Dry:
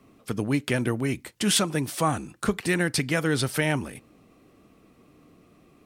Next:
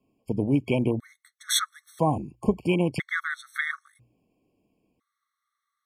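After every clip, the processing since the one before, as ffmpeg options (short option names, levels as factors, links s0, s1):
-af "afwtdn=0.0316,bandreject=f=60:t=h:w=6,bandreject=f=120:t=h:w=6,afftfilt=real='re*gt(sin(2*PI*0.5*pts/sr)*(1-2*mod(floor(b*sr/1024/1100),2)),0)':imag='im*gt(sin(2*PI*0.5*pts/sr)*(1-2*mod(floor(b*sr/1024/1100),2)),0)':win_size=1024:overlap=0.75,volume=1.33"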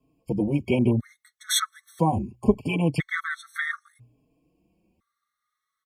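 -filter_complex "[0:a]lowshelf=f=170:g=7,asplit=2[s0][s1];[s1]adelay=4.2,afreqshift=0.7[s2];[s0][s2]amix=inputs=2:normalize=1,volume=1.5"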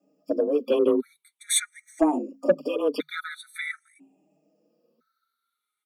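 -af "afftfilt=real='re*pow(10,16/40*sin(2*PI*(0.55*log(max(b,1)*sr/1024/100)/log(2)-(-0.45)*(pts-256)/sr)))':imag='im*pow(10,16/40*sin(2*PI*(0.55*log(max(b,1)*sr/1024/100)/log(2)-(-0.45)*(pts-256)/sr)))':win_size=1024:overlap=0.75,afreqshift=150,asoftclip=type=tanh:threshold=0.447,volume=0.794"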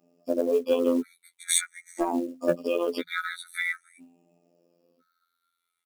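-filter_complex "[0:a]asplit=2[s0][s1];[s1]acompressor=threshold=0.0355:ratio=8,volume=1[s2];[s0][s2]amix=inputs=2:normalize=0,afftfilt=real='hypot(re,im)*cos(PI*b)':imag='0':win_size=2048:overlap=0.75,acrusher=bits=7:mode=log:mix=0:aa=0.000001"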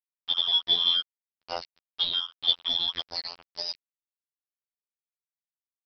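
-af "afftfilt=real='real(if(lt(b,272),68*(eq(floor(b/68),0)*2+eq(floor(b/68),1)*3+eq(floor(b/68),2)*0+eq(floor(b/68),3)*1)+mod(b,68),b),0)':imag='imag(if(lt(b,272),68*(eq(floor(b/68),0)*2+eq(floor(b/68),1)*3+eq(floor(b/68),2)*0+eq(floor(b/68),3)*1)+mod(b,68),b),0)':win_size=2048:overlap=0.75,aresample=11025,aeval=exprs='sgn(val(0))*max(abs(val(0))-0.0178,0)':c=same,aresample=44100,volume=1.12"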